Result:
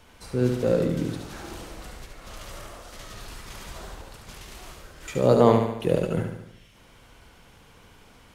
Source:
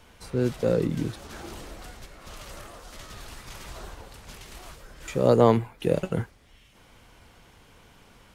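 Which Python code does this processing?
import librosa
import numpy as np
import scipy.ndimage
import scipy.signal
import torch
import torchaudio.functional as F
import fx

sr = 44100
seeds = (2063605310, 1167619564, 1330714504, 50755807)

y = fx.echo_feedback(x, sr, ms=72, feedback_pct=54, wet_db=-5.5)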